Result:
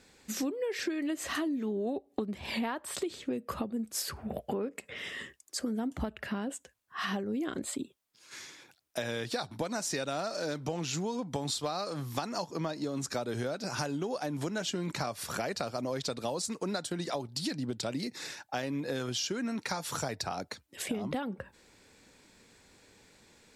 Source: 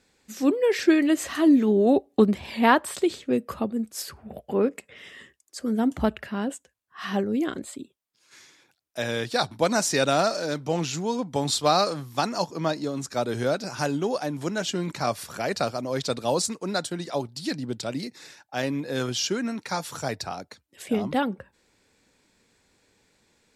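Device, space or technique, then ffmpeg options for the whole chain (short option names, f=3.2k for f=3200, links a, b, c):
serial compression, peaks first: -af "acompressor=threshold=-31dB:ratio=6,acompressor=threshold=-39dB:ratio=2,volume=5dB"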